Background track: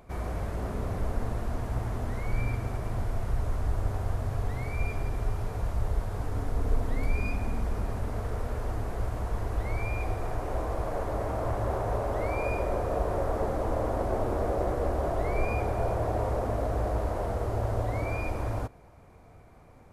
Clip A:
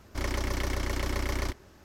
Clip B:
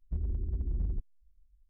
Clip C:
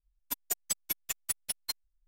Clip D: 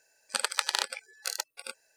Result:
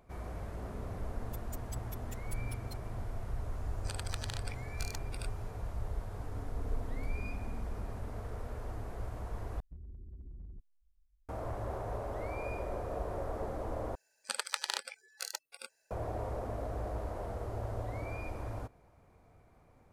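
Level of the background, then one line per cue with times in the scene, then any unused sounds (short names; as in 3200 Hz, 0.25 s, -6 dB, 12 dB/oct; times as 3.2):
background track -9 dB
1.02 add C -17.5 dB
3.55 add D -3 dB + compressor 4:1, threshold -38 dBFS
9.6 replace with B -8 dB + compressor, threshold -37 dBFS
13.95 replace with D -7 dB
not used: A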